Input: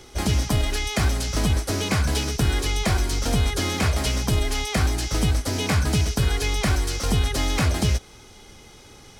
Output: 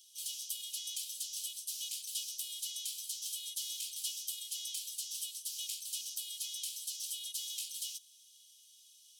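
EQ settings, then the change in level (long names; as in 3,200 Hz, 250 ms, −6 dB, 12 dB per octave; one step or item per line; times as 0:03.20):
Butterworth high-pass 3,000 Hz 72 dB per octave
parametric band 4,500 Hz −11.5 dB 1.8 octaves
0.0 dB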